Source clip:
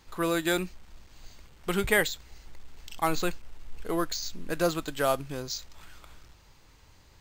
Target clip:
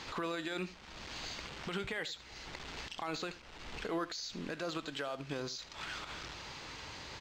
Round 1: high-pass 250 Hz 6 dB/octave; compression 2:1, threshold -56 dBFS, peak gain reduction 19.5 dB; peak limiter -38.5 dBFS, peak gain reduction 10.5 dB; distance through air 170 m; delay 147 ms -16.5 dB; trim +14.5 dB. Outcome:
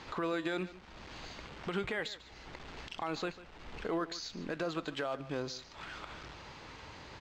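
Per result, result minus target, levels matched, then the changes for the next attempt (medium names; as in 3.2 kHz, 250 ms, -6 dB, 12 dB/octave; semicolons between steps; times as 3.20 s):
echo 68 ms late; 4 kHz band -4.0 dB
change: delay 79 ms -16.5 dB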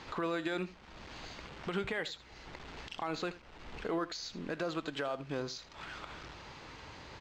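4 kHz band -4.0 dB
add after compression: treble shelf 2.7 kHz +10 dB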